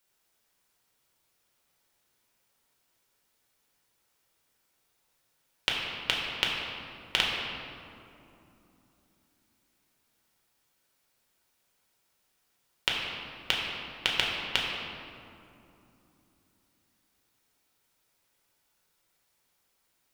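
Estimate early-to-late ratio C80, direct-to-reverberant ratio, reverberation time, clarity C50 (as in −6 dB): 1.5 dB, −3.5 dB, 2.9 s, 0.5 dB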